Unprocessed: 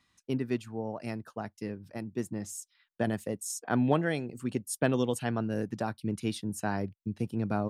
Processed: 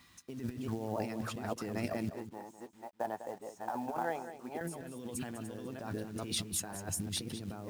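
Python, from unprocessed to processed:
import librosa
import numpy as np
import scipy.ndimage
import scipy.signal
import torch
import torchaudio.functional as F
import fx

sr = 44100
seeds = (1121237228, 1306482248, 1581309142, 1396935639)

y = fx.reverse_delay(x, sr, ms=483, wet_db=-4)
y = fx.bandpass_q(y, sr, hz=860.0, q=5.1, at=(2.09, 4.61))
y = fx.over_compress(y, sr, threshold_db=-41.0, ratio=-1.0)
y = fx.quant_companded(y, sr, bits=6)
y = fx.doubler(y, sr, ms=12.0, db=-13)
y = y + 10.0 ** (-12.0 / 20.0) * np.pad(y, (int(200 * sr / 1000.0), 0))[:len(y)]
y = F.gain(torch.from_numpy(y), 1.0).numpy()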